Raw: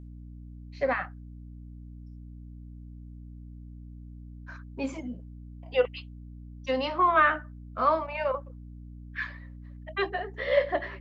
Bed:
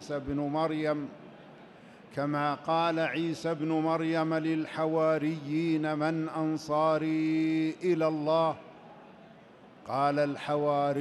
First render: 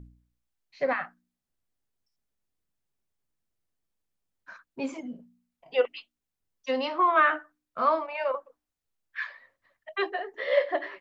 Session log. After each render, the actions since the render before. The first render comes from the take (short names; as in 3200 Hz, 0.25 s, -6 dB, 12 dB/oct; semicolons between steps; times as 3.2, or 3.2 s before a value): de-hum 60 Hz, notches 5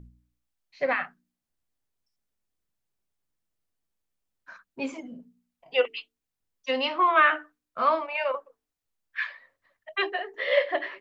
dynamic EQ 2700 Hz, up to +8 dB, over -46 dBFS, Q 1.3; notches 50/100/150/200/250/300/350/400/450 Hz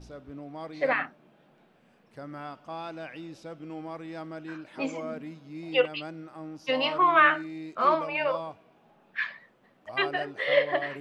add bed -10.5 dB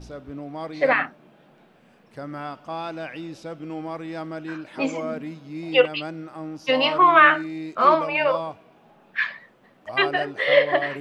gain +6.5 dB; limiter -3 dBFS, peak gain reduction 1.5 dB